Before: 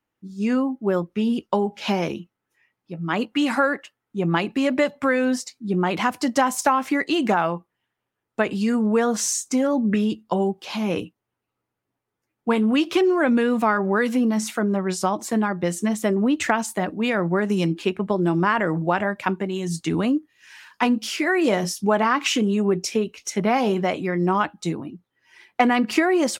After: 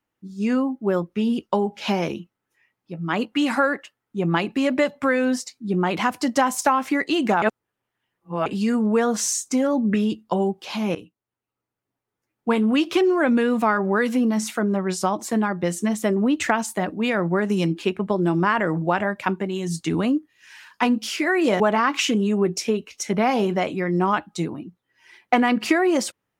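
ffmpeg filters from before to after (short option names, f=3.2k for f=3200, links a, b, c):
-filter_complex "[0:a]asplit=5[a][b][c][d][e];[a]atrim=end=7.422[f];[b]atrim=start=7.418:end=8.462,asetpts=PTS-STARTPTS,areverse[g];[c]atrim=start=8.458:end=10.95,asetpts=PTS-STARTPTS,afade=t=out:st=2.488:d=0.004:c=hsin:silence=0.237137[h];[d]atrim=start=10.95:end=21.602,asetpts=PTS-STARTPTS,afade=t=in:d=1.54:silence=0.237137[i];[e]atrim=start=21.868[j];[f][g]acrossfade=d=0.004:c1=hsin:c2=hsin[k];[h][i]concat=n=2:v=0:a=1[l];[k][l]acrossfade=d=0.004:c1=hsin:c2=hsin[m];[m][j]acrossfade=d=0.004:c1=hsin:c2=hsin"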